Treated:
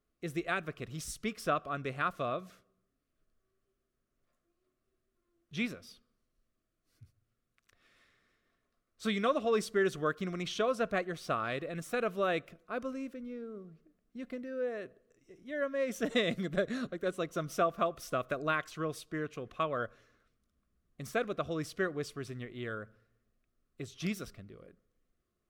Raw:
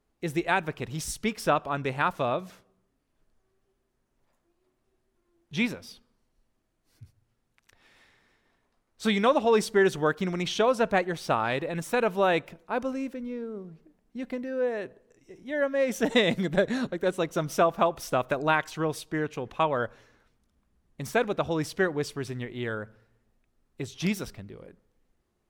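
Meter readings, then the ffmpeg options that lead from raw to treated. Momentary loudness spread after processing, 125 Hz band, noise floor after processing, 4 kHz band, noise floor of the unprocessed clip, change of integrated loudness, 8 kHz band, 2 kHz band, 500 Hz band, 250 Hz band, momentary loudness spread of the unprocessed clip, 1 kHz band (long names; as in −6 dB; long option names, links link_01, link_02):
13 LU, −7.5 dB, −83 dBFS, −7.5 dB, −75 dBFS, −7.5 dB, −7.5 dB, −7.0 dB, −7.5 dB, −7.5 dB, 13 LU, −8.0 dB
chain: -af "superequalizer=9b=0.282:10b=1.41,volume=-7.5dB"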